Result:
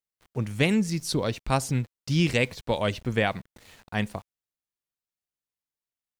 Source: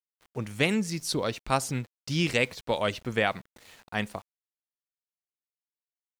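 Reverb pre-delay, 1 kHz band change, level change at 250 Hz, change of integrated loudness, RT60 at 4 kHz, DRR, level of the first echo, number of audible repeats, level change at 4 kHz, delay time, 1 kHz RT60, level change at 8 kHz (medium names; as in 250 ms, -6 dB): no reverb, 0.0 dB, +4.0 dB, +2.0 dB, no reverb, no reverb, no echo, no echo, 0.0 dB, no echo, no reverb, 0.0 dB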